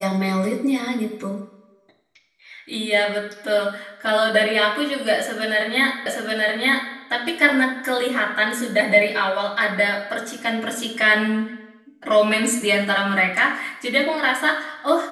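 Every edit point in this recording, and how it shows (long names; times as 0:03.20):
0:06.06: the same again, the last 0.88 s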